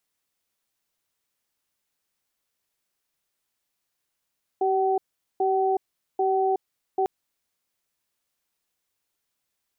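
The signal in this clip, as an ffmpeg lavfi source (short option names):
-f lavfi -i "aevalsrc='0.075*(sin(2*PI*385*t)+sin(2*PI*760*t))*clip(min(mod(t,0.79),0.37-mod(t,0.79))/0.005,0,1)':d=2.45:s=44100"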